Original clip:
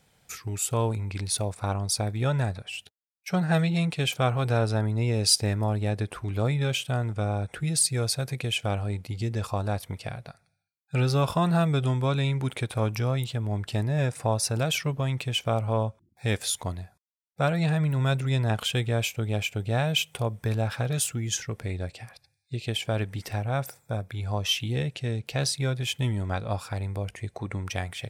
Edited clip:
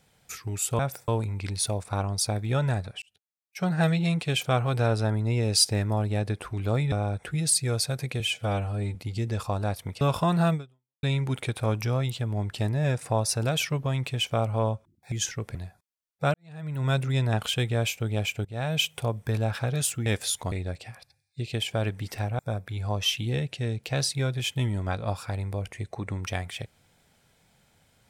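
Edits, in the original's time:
2.73–3.48 s: fade in
6.63–7.21 s: delete
8.49–8.99 s: stretch 1.5×
10.05–11.15 s: delete
11.68–12.17 s: fade out exponential
16.26–16.72 s: swap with 21.23–21.66 s
17.51–18.07 s: fade in quadratic
19.62–19.95 s: fade in, from -19.5 dB
23.53–23.82 s: move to 0.79 s

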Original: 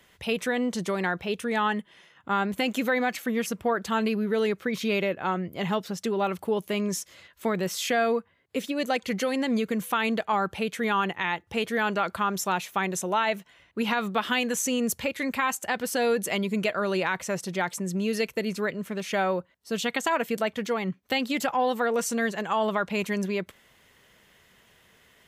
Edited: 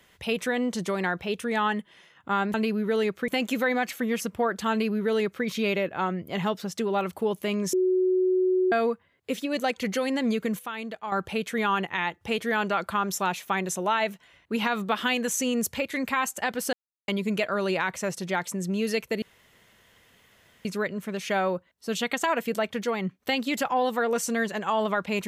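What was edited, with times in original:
3.97–4.71 s: copy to 2.54 s
6.99–7.98 s: bleep 370 Hz -19.5 dBFS
9.85–10.38 s: gain -9 dB
15.99–16.34 s: mute
18.48 s: insert room tone 1.43 s

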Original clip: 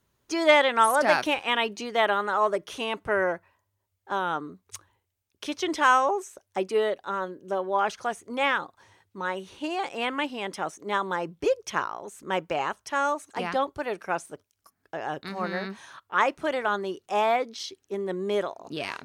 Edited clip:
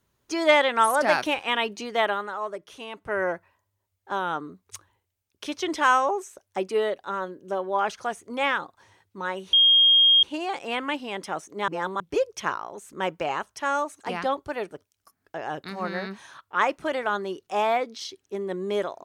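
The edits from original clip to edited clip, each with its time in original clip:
2.00–3.30 s: dip -8 dB, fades 0.36 s
9.53 s: add tone 3.24 kHz -13.5 dBFS 0.70 s
10.98–11.30 s: reverse
14.01–14.30 s: delete

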